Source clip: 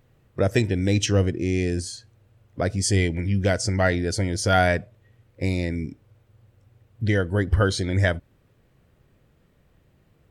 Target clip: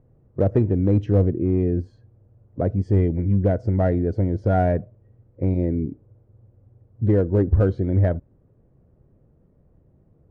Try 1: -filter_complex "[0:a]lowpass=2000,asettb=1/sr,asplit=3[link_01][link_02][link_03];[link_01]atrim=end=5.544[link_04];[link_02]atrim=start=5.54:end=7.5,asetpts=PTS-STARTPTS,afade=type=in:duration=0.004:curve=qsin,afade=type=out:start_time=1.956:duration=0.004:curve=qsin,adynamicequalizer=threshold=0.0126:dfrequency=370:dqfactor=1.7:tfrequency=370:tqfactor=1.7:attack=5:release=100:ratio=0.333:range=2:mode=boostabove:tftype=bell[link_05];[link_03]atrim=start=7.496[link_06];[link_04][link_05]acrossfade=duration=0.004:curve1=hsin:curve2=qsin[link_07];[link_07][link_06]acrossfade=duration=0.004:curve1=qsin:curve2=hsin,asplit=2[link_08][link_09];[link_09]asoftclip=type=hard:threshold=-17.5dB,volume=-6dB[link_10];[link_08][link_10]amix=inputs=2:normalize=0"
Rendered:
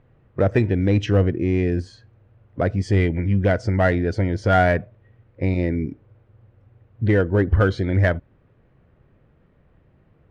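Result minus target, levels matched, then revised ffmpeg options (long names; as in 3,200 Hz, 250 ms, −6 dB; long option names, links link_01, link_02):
2,000 Hz band +14.5 dB
-filter_complex "[0:a]lowpass=610,asettb=1/sr,asplit=3[link_01][link_02][link_03];[link_01]atrim=end=5.544[link_04];[link_02]atrim=start=5.54:end=7.5,asetpts=PTS-STARTPTS,afade=type=in:duration=0.004:curve=qsin,afade=type=out:start_time=1.956:duration=0.004:curve=qsin,adynamicequalizer=threshold=0.0126:dfrequency=370:dqfactor=1.7:tfrequency=370:tqfactor=1.7:attack=5:release=100:ratio=0.333:range=2:mode=boostabove:tftype=bell[link_05];[link_03]atrim=start=7.496[link_06];[link_04][link_05]acrossfade=duration=0.004:curve1=hsin:curve2=qsin[link_07];[link_07][link_06]acrossfade=duration=0.004:curve1=qsin:curve2=hsin,asplit=2[link_08][link_09];[link_09]asoftclip=type=hard:threshold=-17.5dB,volume=-6dB[link_10];[link_08][link_10]amix=inputs=2:normalize=0"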